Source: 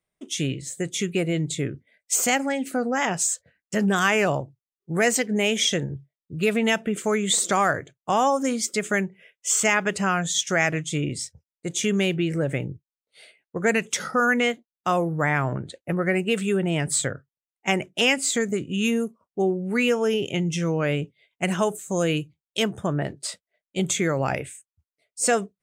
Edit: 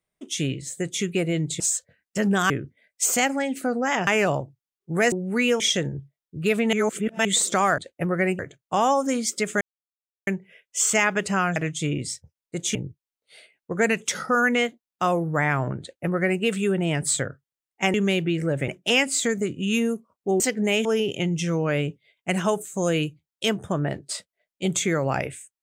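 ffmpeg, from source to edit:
-filter_complex "[0:a]asplit=17[a][b][c][d][e][f][g][h][i][j][k][l][m][n][o][p][q];[a]atrim=end=1.602[r];[b]atrim=start=3.168:end=4.072[s];[c]atrim=start=1.598:end=3.172[t];[d]atrim=start=4.068:end=5.122[u];[e]atrim=start=19.508:end=19.992[v];[f]atrim=start=5.568:end=6.702[w];[g]atrim=start=6.698:end=7.222,asetpts=PTS-STARTPTS,areverse[x];[h]atrim=start=7.218:end=7.752[y];[i]atrim=start=15.658:end=16.272[z];[j]atrim=start=7.748:end=8.97,asetpts=PTS-STARTPTS,afade=t=out:st=1.218:d=0.004:c=hsin,apad=pad_dur=0.66[aa];[k]atrim=start=8.97:end=10.262,asetpts=PTS-STARTPTS,afade=t=in:d=0.004:c=hsin[ab];[l]atrim=start=10.668:end=11.862[ac];[m]atrim=start=12.598:end=17.792[ad];[n]atrim=start=11.858:end=12.602[ae];[o]atrim=start=17.788:end=19.512[af];[p]atrim=start=5.118:end=5.572[ag];[q]atrim=start=19.988[ah];[r][s]acrossfade=d=0.004:c1=hsin:c2=hsin[ai];[ai][t]acrossfade=d=0.004:c1=hsin:c2=hsin[aj];[aj][u]acrossfade=d=0.004:c1=hsin:c2=hsin[ak];[ak][v]acrossfade=d=0.004:c1=hsin:c2=hsin[al];[al][w]acrossfade=d=0.004:c1=hsin:c2=hsin[am];[am][x]acrossfade=d=0.004:c1=hsin:c2=hsin[an];[an][y]acrossfade=d=0.004:c1=hsin:c2=hsin[ao];[ao][z]acrossfade=d=0.004:c1=hsin:c2=hsin[ap];[aa][ab]concat=n=2:v=0:a=1[aq];[ap][aq]acrossfade=d=0.004:c1=hsin:c2=hsin[ar];[ar][ac]acrossfade=d=0.004:c1=hsin:c2=hsin[as];[as][ad]acrossfade=d=0.004:c1=hsin:c2=hsin[at];[at][ae]acrossfade=d=0.004:c1=hsin:c2=hsin[au];[au][af]acrossfade=d=0.004:c1=hsin:c2=hsin[av];[av][ag]acrossfade=d=0.004:c1=hsin:c2=hsin[aw];[aw][ah]acrossfade=d=0.004:c1=hsin:c2=hsin"

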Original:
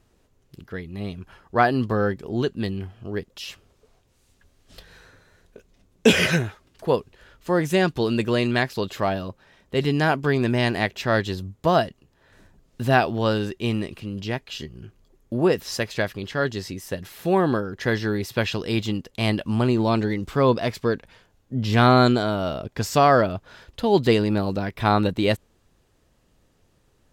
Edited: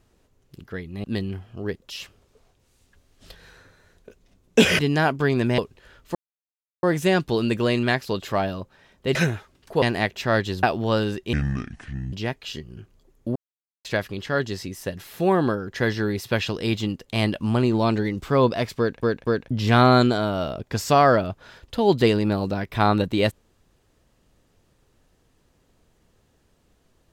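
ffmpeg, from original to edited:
-filter_complex "[0:a]asplit=15[a][b][c][d][e][f][g][h][i][j][k][l][m][n][o];[a]atrim=end=1.042[p];[b]atrim=start=2.518:end=6.272[q];[c]atrim=start=9.828:end=10.622[r];[d]atrim=start=6.938:end=7.51,asetpts=PTS-STARTPTS,afade=t=out:st=0.568:d=0.004:c=hsin,apad=pad_dur=0.68[s];[e]atrim=start=7.51:end=9.832,asetpts=PTS-STARTPTS,afade=t=in:d=0.004:c=hsin[t];[f]atrim=start=6.268:end=6.942[u];[g]atrim=start=10.618:end=11.432[v];[h]atrim=start=12.968:end=13.674[w];[i]atrim=start=13.67:end=14.18,asetpts=PTS-STARTPTS,asetrate=28224,aresample=44100,atrim=end_sample=35142,asetpts=PTS-STARTPTS[x];[j]atrim=start=14.176:end=15.41,asetpts=PTS-STARTPTS,afade=t=out:st=1.23:d=0.004:c=hsin[y];[k]atrim=start=15.41:end=15.9,asetpts=PTS-STARTPTS,volume=0[z];[l]atrim=start=15.9:end=21.082,asetpts=PTS-STARTPTS,afade=t=in:d=0.004:c=hsin[aa];[m]atrim=start=20.838:end=21.082[ab];[n]atrim=start=20.838:end=21.082[ac];[o]atrim=start=21.558[ad];[p][q]acrossfade=d=0.004:c1=hsin:c2=hsin[ae];[ae][r]acrossfade=d=0.004:c1=hsin:c2=hsin[af];[s][t]concat=n=2:v=0:a=1[ag];[af][ag]acrossfade=d=0.004:c1=hsin:c2=hsin[ah];[ah][u]acrossfade=d=0.004:c1=hsin:c2=hsin[ai];[ai][v]acrossfade=d=0.004:c1=hsin:c2=hsin[aj];[aj][w]acrossfade=d=0.004:c1=hsin:c2=hsin[ak];[ak][x]acrossfade=d=0.004:c1=hsin:c2=hsin[al];[y][z][aa]concat=n=3:v=0:a=1[am];[al][am]acrossfade=d=0.004:c1=hsin:c2=hsin[an];[an][ab]acrossfade=d=0.004:c1=hsin:c2=hsin[ao];[ao][ac]acrossfade=d=0.004:c1=hsin:c2=hsin[ap];[ap][ad]acrossfade=d=0.004:c1=hsin:c2=hsin"

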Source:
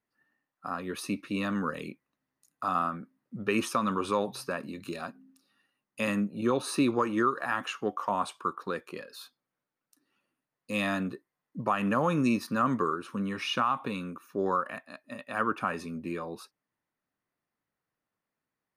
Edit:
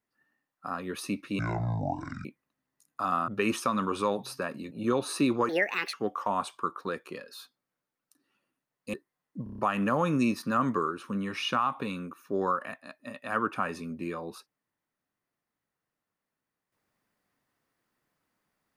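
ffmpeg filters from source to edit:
-filter_complex "[0:a]asplit=13[a][b][c][d][e][f][g][h][i][j][k][l][m];[a]atrim=end=1.394[n];[b]atrim=start=1.39:end=1.88,asetpts=PTS-STARTPTS,asetrate=25137,aresample=44100[o];[c]atrim=start=1.876:end=2.912[p];[d]atrim=start=3.368:end=4.802[q];[e]atrim=start=6.288:end=7.074[r];[f]atrim=start=7.07:end=7.75,asetpts=PTS-STARTPTS,asetrate=67473,aresample=44100[s];[g]atrim=start=7.746:end=10.752[t];[h]atrim=start=11.128:end=11.662[u];[i]atrim=start=11.628:end=11.662[v];[j]atrim=start=11.628:end=11.662[w];[k]atrim=start=11.628:end=11.662[x];[l]atrim=start=11.628:end=11.662[y];[m]atrim=start=11.628[z];[n][o]acrossfade=d=0.004:c1=hsin:c2=hsin[aa];[aa][p]acrossfade=d=0.004:c1=hsin:c2=hsin[ab];[ab][q]acrossfade=d=0.004:c1=hsin:c2=hsin[ac];[ac][r]acrossfade=d=0.004:c1=hsin:c2=hsin[ad];[ad][s]acrossfade=d=0.004:c1=hsin:c2=hsin[ae];[ae][t]acrossfade=d=0.004:c1=hsin:c2=hsin[af];[af][u]acrossfade=d=0.004:c1=hsin:c2=hsin[ag];[ag][v]acrossfade=d=0.004:c1=hsin:c2=hsin[ah];[ah][w]acrossfade=d=0.004:c1=hsin:c2=hsin[ai];[ai][x]acrossfade=d=0.004:c1=hsin:c2=hsin[aj];[aj][y]acrossfade=d=0.004:c1=hsin:c2=hsin[ak];[ak][z]acrossfade=d=0.004:c1=hsin:c2=hsin"

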